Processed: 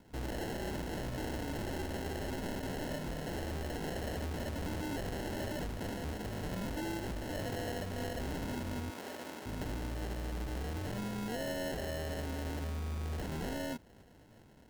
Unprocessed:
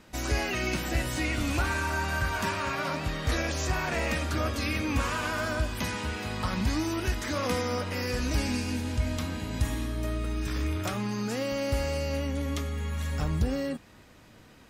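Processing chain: tracing distortion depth 0.17 ms; steep low-pass 8.7 kHz 72 dB/octave; sample-and-hold 37×; wavefolder -28 dBFS; 8.90–9.46 s: high-pass 350 Hz 12 dB/octave; trim -5 dB

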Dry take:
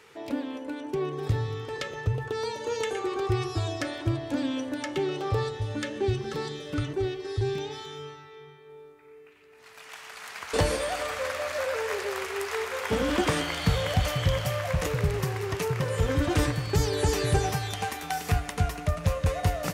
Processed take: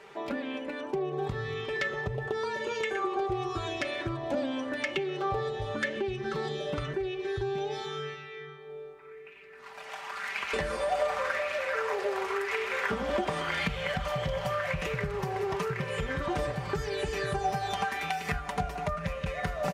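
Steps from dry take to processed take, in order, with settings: treble shelf 5.7 kHz -11.5 dB; comb 5.1 ms, depth 66%; compression, threshold -31 dBFS, peak gain reduction 13.5 dB; sweeping bell 0.91 Hz 650–2600 Hz +9 dB; trim +1 dB

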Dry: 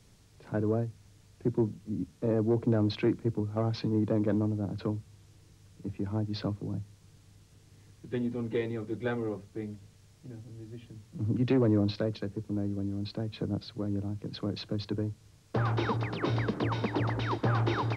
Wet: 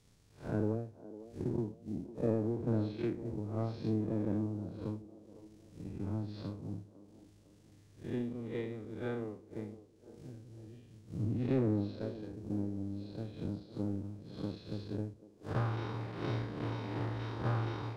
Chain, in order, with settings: spectral blur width 143 ms; transient shaper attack +12 dB, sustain -9 dB; feedback echo behind a band-pass 505 ms, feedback 46%, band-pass 470 Hz, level -13.5 dB; trim -6 dB

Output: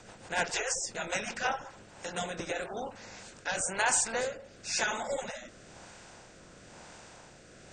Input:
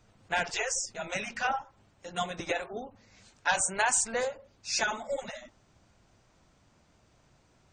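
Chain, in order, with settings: spectral levelling over time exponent 0.6; rotary cabinet horn 6.7 Hz, later 1 Hz, at 1.22 s; trim -2 dB

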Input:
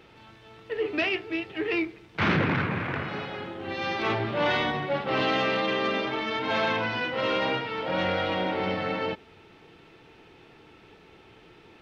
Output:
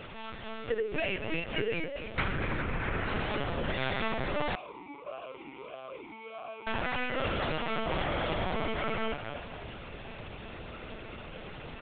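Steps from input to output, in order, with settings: comb 4.5 ms, depth 33%; compression 16:1, threshold -37 dBFS, peak gain reduction 19 dB; frequency-shifting echo 250 ms, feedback 36%, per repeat +120 Hz, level -8.5 dB; LPC vocoder at 8 kHz pitch kept; 4.55–6.67 s: talking filter a-u 1.6 Hz; trim +8.5 dB

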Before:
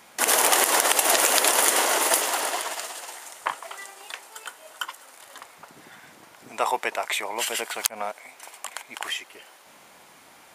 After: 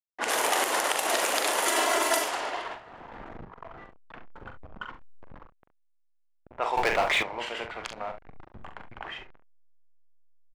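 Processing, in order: send-on-delta sampling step -32.5 dBFS; 1.66–2.24 s: comb 3 ms, depth 90%; 2.76–3.74 s: compressor with a negative ratio -40 dBFS, ratio -1; early reflections 42 ms -7.5 dB, 69 ms -11.5 dB; level-controlled noise filter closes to 1.1 kHz, open at -16 dBFS; treble shelf 5.9 kHz -9.5 dB; 6.77–7.23 s: waveshaping leveller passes 3; trim -4.5 dB

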